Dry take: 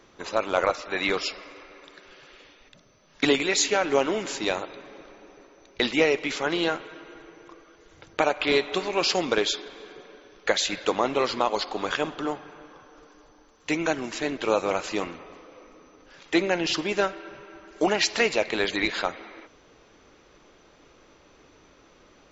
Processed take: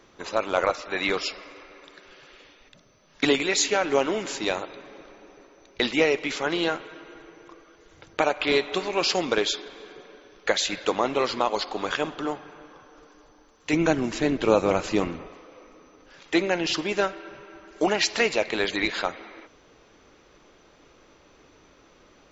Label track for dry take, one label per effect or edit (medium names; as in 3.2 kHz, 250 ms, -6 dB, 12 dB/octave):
13.730000	15.280000	bass shelf 330 Hz +12 dB